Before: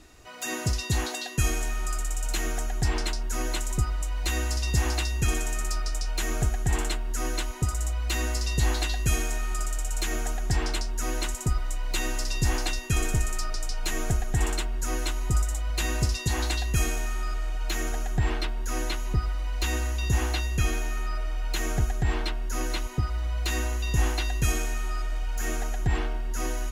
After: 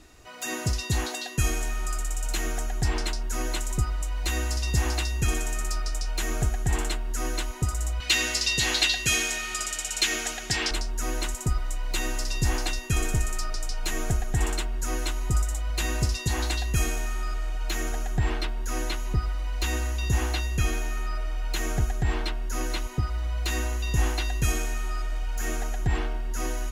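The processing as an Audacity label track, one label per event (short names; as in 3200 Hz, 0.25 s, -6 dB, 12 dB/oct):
8.000000	10.710000	weighting filter D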